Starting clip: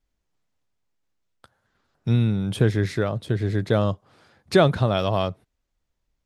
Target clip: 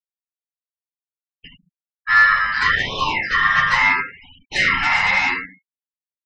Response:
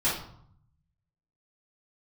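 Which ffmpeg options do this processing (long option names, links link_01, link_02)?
-filter_complex "[0:a]aemphasis=mode=production:type=riaa,aecho=1:1:50|79:0.376|0.376,acrossover=split=2700[link_01][link_02];[link_02]acompressor=threshold=-42dB:ratio=4:attack=1:release=60[link_03];[link_01][link_03]amix=inputs=2:normalize=0,highpass=130,lowpass=3900,acompressor=threshold=-26dB:ratio=5,aeval=exprs='val(0)*sin(2*PI*1500*n/s)':channel_layout=same,aeval=exprs='0.0501*(abs(mod(val(0)/0.0501+3,4)-2)-1)':channel_layout=same,equalizer=frequency=1800:width=0.69:gain=10[link_04];[1:a]atrim=start_sample=2205,asetrate=70560,aresample=44100[link_05];[link_04][link_05]afir=irnorm=-1:irlink=0,afftfilt=real='re*gte(hypot(re,im),0.0112)':imag='im*gte(hypot(re,im),0.0112)':win_size=1024:overlap=0.75,afftfilt=real='re*(1-between(b*sr/1024,320*pow(1700/320,0.5+0.5*sin(2*PI*0.74*pts/sr))/1.41,320*pow(1700/320,0.5+0.5*sin(2*PI*0.74*pts/sr))*1.41))':imag='im*(1-between(b*sr/1024,320*pow(1700/320,0.5+0.5*sin(2*PI*0.74*pts/sr))/1.41,320*pow(1700/320,0.5+0.5*sin(2*PI*0.74*pts/sr))*1.41))':win_size=1024:overlap=0.75,volume=3.5dB"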